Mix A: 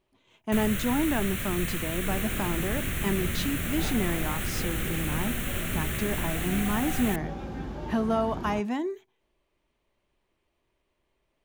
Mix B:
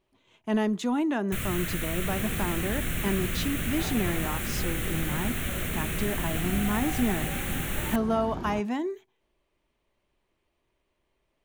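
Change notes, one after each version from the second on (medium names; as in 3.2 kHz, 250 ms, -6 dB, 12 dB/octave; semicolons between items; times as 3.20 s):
first sound: entry +0.80 s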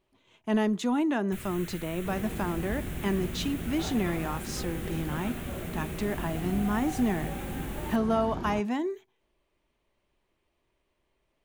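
first sound -11.0 dB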